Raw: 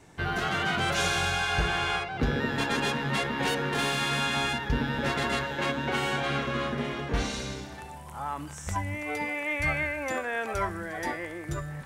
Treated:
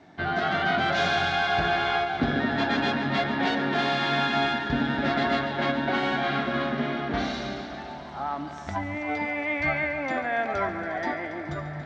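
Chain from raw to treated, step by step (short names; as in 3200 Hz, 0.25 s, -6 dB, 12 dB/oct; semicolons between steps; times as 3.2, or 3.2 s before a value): speaker cabinet 110–4400 Hz, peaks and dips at 120 Hz -8 dB, 270 Hz +4 dB, 480 Hz -9 dB, 680 Hz +8 dB, 1000 Hz -5 dB, 2700 Hz -7 dB; multi-head echo 0.141 s, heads first and second, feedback 73%, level -16 dB; gain +3 dB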